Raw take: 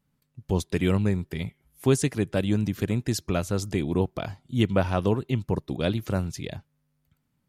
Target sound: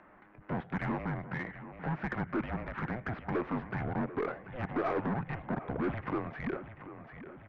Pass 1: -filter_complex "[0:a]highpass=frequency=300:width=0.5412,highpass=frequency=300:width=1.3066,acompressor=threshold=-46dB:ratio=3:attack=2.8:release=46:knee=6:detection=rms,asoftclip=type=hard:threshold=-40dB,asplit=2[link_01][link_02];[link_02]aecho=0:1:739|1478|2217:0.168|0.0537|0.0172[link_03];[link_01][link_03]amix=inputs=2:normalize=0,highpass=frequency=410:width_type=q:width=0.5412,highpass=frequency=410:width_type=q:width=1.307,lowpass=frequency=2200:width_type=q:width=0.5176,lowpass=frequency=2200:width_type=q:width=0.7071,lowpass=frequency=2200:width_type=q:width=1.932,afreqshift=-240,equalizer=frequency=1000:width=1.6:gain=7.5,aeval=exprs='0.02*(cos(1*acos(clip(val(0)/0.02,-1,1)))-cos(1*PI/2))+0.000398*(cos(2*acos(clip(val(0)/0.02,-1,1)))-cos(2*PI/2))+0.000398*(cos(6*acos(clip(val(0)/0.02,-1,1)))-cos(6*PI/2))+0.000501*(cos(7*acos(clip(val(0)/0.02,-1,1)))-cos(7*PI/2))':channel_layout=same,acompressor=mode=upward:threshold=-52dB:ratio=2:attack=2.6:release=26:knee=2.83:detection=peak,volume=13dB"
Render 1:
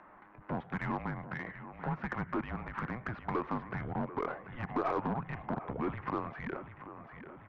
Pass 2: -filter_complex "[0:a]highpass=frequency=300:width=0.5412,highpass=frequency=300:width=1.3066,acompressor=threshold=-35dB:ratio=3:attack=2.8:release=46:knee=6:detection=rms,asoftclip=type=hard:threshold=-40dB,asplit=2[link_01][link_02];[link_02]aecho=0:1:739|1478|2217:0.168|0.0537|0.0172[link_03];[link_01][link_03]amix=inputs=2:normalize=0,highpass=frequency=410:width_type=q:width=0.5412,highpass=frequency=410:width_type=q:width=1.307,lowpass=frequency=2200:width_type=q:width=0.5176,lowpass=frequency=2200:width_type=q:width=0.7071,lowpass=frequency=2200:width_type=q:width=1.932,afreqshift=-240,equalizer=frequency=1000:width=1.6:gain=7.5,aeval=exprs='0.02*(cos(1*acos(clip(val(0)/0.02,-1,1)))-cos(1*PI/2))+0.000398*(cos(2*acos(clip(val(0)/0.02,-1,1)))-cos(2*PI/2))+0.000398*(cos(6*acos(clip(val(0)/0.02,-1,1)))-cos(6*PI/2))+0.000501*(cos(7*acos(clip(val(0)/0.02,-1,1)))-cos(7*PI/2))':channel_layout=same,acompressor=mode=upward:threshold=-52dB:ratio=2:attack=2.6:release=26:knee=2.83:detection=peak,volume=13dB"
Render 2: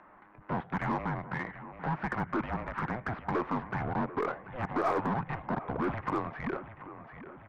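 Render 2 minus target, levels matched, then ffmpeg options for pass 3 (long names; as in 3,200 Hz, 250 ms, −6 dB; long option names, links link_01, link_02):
1,000 Hz band +3.5 dB
-filter_complex "[0:a]highpass=frequency=300:width=0.5412,highpass=frequency=300:width=1.3066,acompressor=threshold=-35dB:ratio=3:attack=2.8:release=46:knee=6:detection=rms,asoftclip=type=hard:threshold=-40dB,asplit=2[link_01][link_02];[link_02]aecho=0:1:739|1478|2217:0.168|0.0537|0.0172[link_03];[link_01][link_03]amix=inputs=2:normalize=0,highpass=frequency=410:width_type=q:width=0.5412,highpass=frequency=410:width_type=q:width=1.307,lowpass=frequency=2200:width_type=q:width=0.5176,lowpass=frequency=2200:width_type=q:width=0.7071,lowpass=frequency=2200:width_type=q:width=1.932,afreqshift=-240,aeval=exprs='0.02*(cos(1*acos(clip(val(0)/0.02,-1,1)))-cos(1*PI/2))+0.000398*(cos(2*acos(clip(val(0)/0.02,-1,1)))-cos(2*PI/2))+0.000398*(cos(6*acos(clip(val(0)/0.02,-1,1)))-cos(6*PI/2))+0.000501*(cos(7*acos(clip(val(0)/0.02,-1,1)))-cos(7*PI/2))':channel_layout=same,acompressor=mode=upward:threshold=-52dB:ratio=2:attack=2.6:release=26:knee=2.83:detection=peak,volume=13dB"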